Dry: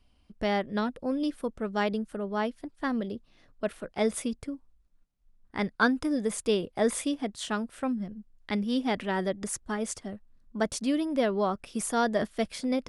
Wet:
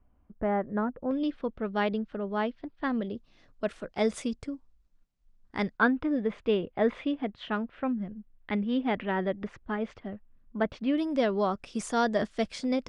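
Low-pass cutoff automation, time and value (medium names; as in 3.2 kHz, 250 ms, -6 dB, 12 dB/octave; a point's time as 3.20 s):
low-pass 24 dB/octave
1.6 kHz
from 1.11 s 3.9 kHz
from 3.15 s 7.6 kHz
from 5.77 s 3 kHz
from 10.98 s 7.5 kHz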